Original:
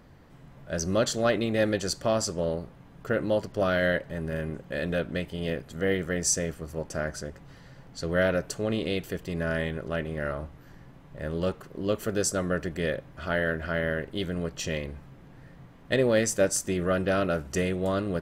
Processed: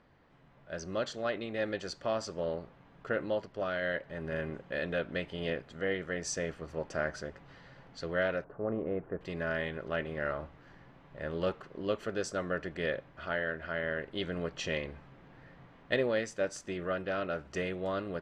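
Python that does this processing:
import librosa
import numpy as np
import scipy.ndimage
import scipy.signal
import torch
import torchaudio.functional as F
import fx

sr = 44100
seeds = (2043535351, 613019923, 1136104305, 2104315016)

y = fx.lowpass(x, sr, hz=1300.0, slope=24, at=(8.44, 9.21))
y = scipy.signal.sosfilt(scipy.signal.butter(2, 3700.0, 'lowpass', fs=sr, output='sos'), y)
y = fx.low_shelf(y, sr, hz=310.0, db=-9.5)
y = fx.rider(y, sr, range_db=4, speed_s=0.5)
y = y * librosa.db_to_amplitude(-3.5)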